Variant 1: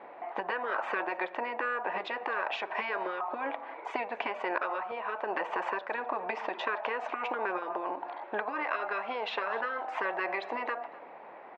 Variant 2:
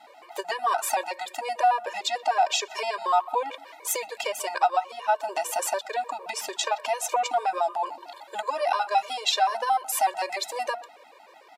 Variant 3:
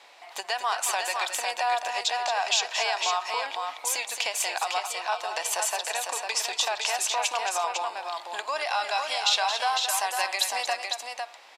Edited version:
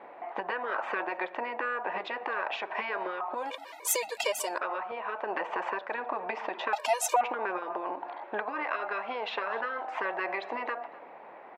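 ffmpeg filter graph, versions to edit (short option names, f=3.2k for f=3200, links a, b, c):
-filter_complex "[1:a]asplit=2[a][b];[0:a]asplit=3[c][d][e];[c]atrim=end=3.55[f];[a]atrim=start=3.31:end=4.63[g];[d]atrim=start=4.39:end=6.732[h];[b]atrim=start=6.728:end=7.212[i];[e]atrim=start=7.208[j];[f][g]acrossfade=d=0.24:c1=tri:c2=tri[k];[k][h]acrossfade=d=0.24:c1=tri:c2=tri[l];[l][i]acrossfade=d=0.004:c1=hsin:c2=hsin[m];[m][j]acrossfade=d=0.004:c1=hsin:c2=hsin"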